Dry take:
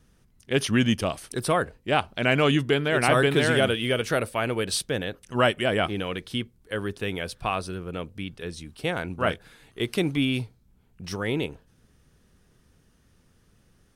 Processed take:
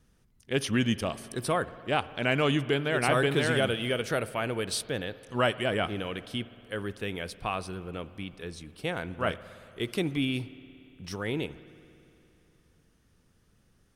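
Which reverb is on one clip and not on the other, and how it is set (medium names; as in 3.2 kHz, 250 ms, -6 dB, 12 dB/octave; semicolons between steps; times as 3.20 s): spring tank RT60 2.9 s, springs 58 ms, chirp 60 ms, DRR 16 dB; trim -4.5 dB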